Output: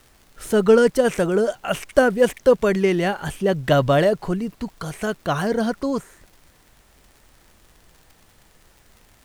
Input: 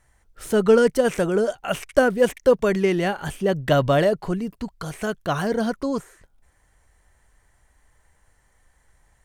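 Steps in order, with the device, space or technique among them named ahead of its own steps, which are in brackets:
vinyl LP (surface crackle; pink noise bed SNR 35 dB)
level +1.5 dB

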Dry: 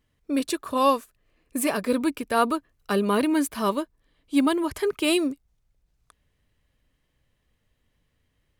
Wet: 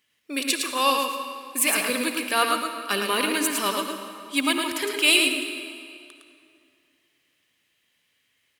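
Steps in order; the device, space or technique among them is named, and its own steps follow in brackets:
PA in a hall (high-pass filter 180 Hz 12 dB per octave; parametric band 2,500 Hz +6 dB 0.99 octaves; single-tap delay 110 ms −4.5 dB; convolution reverb RT60 2.4 s, pre-delay 53 ms, DRR 6.5 dB)
tilt shelving filter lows −7.5 dB, about 1,400 Hz

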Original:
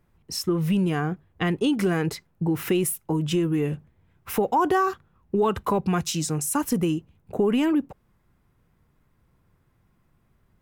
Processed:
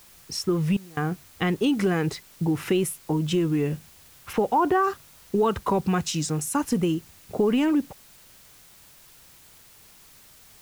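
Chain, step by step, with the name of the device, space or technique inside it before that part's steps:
0:04.32–0:04.82: low-pass filter 4,600 Hz → 2,300 Hz
worn cassette (low-pass filter 9,400 Hz; tape wow and flutter; tape dropouts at 0:00.77, 198 ms −23 dB; white noise bed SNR 26 dB)

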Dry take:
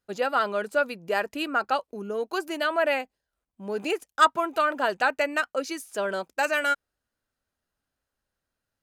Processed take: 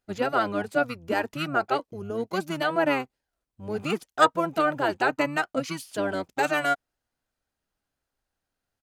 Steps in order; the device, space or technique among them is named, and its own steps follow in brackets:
octave pedal (pitch-shifted copies added −12 semitones −3 dB)
level −1.5 dB

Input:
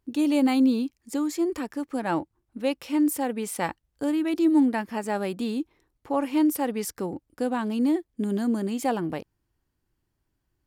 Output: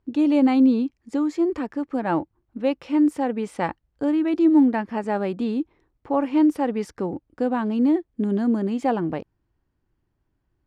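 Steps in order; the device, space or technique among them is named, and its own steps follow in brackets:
through cloth (low-pass filter 7,200 Hz 12 dB per octave; high-shelf EQ 3,400 Hz −14.5 dB)
level +4 dB

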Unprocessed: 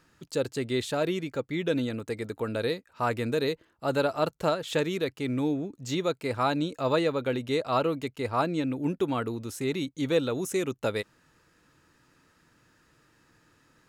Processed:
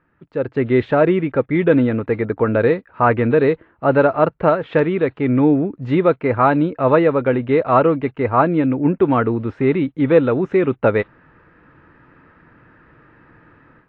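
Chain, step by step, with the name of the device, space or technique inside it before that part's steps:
action camera in a waterproof case (low-pass filter 2,100 Hz 24 dB per octave; automatic gain control gain up to 15 dB; AAC 48 kbit/s 22,050 Hz)

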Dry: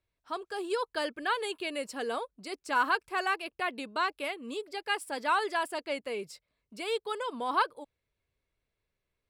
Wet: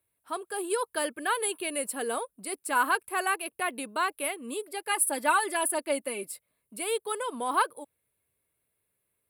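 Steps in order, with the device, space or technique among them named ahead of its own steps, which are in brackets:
0:04.91–0:06.30: comb filter 3.4 ms, depth 64%
budget condenser microphone (high-pass filter 99 Hz 12 dB per octave; high shelf with overshoot 7,800 Hz +11.5 dB, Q 3)
level +2 dB

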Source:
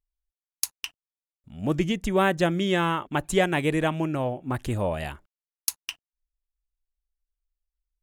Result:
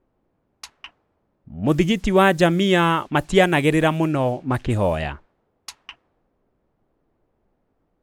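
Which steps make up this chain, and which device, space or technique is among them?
cassette deck with a dynamic noise filter (white noise bed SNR 32 dB; low-pass that shuts in the quiet parts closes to 470 Hz, open at −22 dBFS)
level +6.5 dB

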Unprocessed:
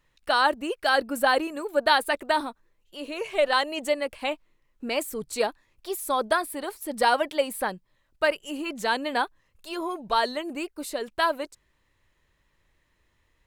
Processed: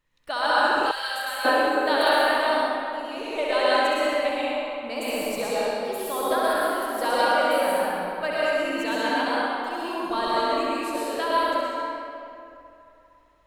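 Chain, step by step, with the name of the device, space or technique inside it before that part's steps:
tunnel (flutter between parallel walls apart 11.3 metres, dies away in 0.79 s; convolution reverb RT60 2.8 s, pre-delay 99 ms, DRR −8 dB)
0:00.91–0:01.45: guitar amp tone stack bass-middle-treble 10-0-10
level −7 dB

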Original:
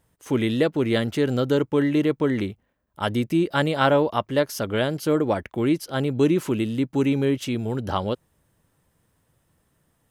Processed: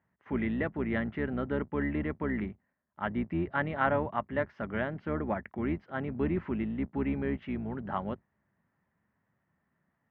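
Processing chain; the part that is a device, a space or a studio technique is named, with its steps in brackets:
sub-octave bass pedal (sub-octave generator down 2 octaves, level −1 dB; loudspeaker in its box 82–2,100 Hz, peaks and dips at 89 Hz −8 dB, 130 Hz −7 dB, 210 Hz +3 dB, 310 Hz −6 dB, 480 Hz −9 dB, 1,900 Hz +6 dB)
level −7 dB

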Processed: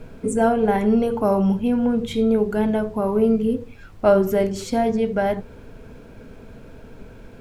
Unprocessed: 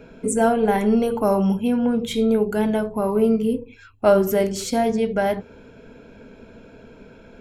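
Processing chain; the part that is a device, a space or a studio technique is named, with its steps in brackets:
car interior (parametric band 110 Hz +5 dB 0.71 octaves; high-shelf EQ 3,600 Hz −7.5 dB; brown noise bed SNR 21 dB)

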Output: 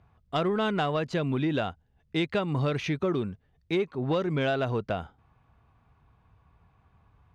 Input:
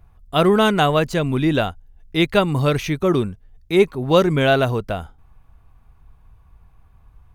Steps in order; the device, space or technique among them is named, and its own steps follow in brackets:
AM radio (band-pass filter 100–4,400 Hz; downward compressor 6 to 1, threshold −20 dBFS, peak gain reduction 11 dB; soft clipping −13.5 dBFS, distortion −24 dB)
level −3 dB

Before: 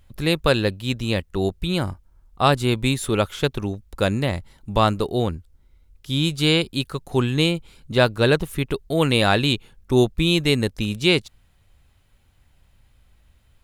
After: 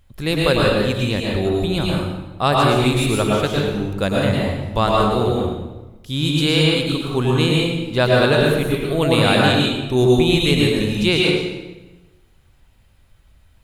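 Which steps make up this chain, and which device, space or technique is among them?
bathroom (convolution reverb RT60 1.1 s, pre-delay 99 ms, DRR −3 dB)
level −1 dB

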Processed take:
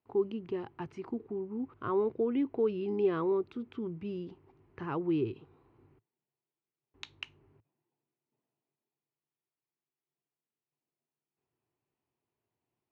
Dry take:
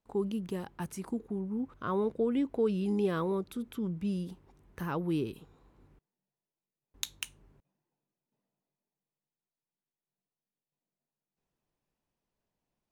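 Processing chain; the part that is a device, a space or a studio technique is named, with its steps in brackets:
guitar cabinet (loudspeaker in its box 98–3,700 Hz, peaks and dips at 110 Hz +7 dB, 190 Hz −10 dB, 370 Hz +6 dB, 550 Hz −6 dB, 1,600 Hz −4 dB, 3,600 Hz −8 dB)

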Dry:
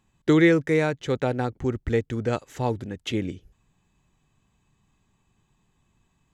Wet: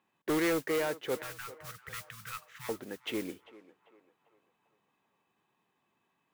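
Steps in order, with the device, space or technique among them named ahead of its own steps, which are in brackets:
carbon microphone (band-pass filter 360–2,900 Hz; soft clipping −24 dBFS, distortion −9 dB; noise that follows the level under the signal 14 dB)
0:01.22–0:02.69: Chebyshev band-stop filter 170–1,100 Hz, order 4
feedback echo with a band-pass in the loop 393 ms, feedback 58%, band-pass 880 Hz, level −15 dB
level −2 dB

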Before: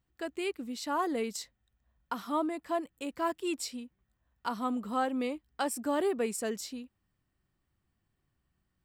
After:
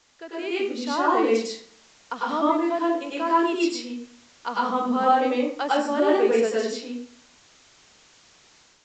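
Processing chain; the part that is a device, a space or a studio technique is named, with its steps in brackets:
filmed off a television (band-pass filter 280–6,000 Hz; parametric band 470 Hz +4 dB 0.24 octaves; convolution reverb RT60 0.55 s, pre-delay 94 ms, DRR −6 dB; white noise bed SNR 26 dB; automatic gain control gain up to 7 dB; level −3 dB; AAC 64 kbit/s 16,000 Hz)

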